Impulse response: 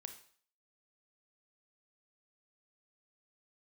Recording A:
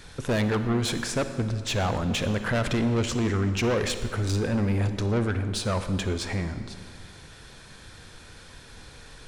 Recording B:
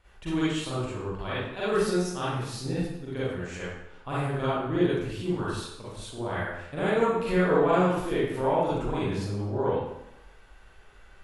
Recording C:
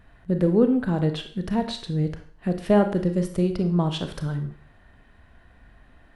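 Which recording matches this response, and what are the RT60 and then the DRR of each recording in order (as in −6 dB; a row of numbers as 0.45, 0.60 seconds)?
C; 2.0, 0.85, 0.50 seconds; 9.0, −10.0, 7.0 decibels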